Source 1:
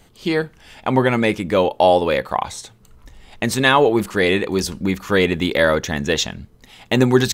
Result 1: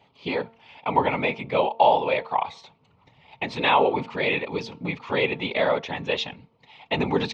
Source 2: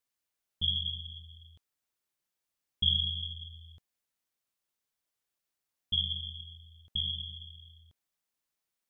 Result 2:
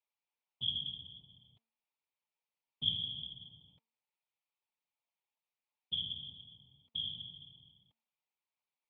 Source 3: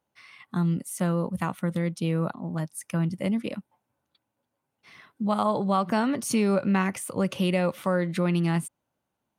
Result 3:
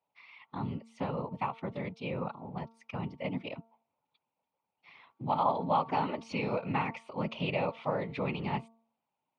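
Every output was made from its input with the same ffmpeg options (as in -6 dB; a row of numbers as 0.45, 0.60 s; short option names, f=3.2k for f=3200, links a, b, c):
-af "afftfilt=real='hypot(re,im)*cos(2*PI*random(0))':imag='hypot(re,im)*sin(2*PI*random(1))':win_size=512:overlap=0.75,highpass=150,equalizer=f=210:t=q:w=4:g=-5,equalizer=f=330:t=q:w=4:g=-8,equalizer=f=890:t=q:w=4:g=9,equalizer=f=1.6k:t=q:w=4:g=-10,equalizer=f=2.4k:t=q:w=4:g=7,lowpass=f=4.1k:w=0.5412,lowpass=f=4.1k:w=1.3066,bandreject=f=227:t=h:w=4,bandreject=f=454:t=h:w=4,bandreject=f=681:t=h:w=4,bandreject=f=908:t=h:w=4,bandreject=f=1.135k:t=h:w=4,bandreject=f=1.362k:t=h:w=4"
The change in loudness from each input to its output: -6.0, -6.0, -7.5 LU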